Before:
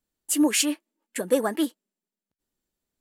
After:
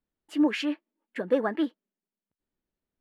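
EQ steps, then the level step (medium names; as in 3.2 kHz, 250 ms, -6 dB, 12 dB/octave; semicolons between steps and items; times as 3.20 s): distance through air 320 m; dynamic bell 1.7 kHz, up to +4 dB, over -45 dBFS, Q 1.9; -1.5 dB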